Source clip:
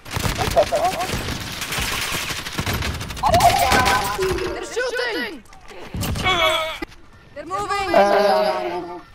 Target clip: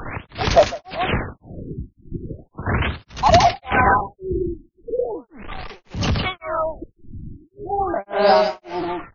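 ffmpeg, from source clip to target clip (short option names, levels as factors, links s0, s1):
-af "aeval=exprs='val(0)+0.5*0.0376*sgn(val(0))':c=same,tremolo=f=1.8:d=1,afftfilt=real='re*lt(b*sr/1024,340*pow(7000/340,0.5+0.5*sin(2*PI*0.38*pts/sr)))':imag='im*lt(b*sr/1024,340*pow(7000/340,0.5+0.5*sin(2*PI*0.38*pts/sr)))':win_size=1024:overlap=0.75,volume=1.41"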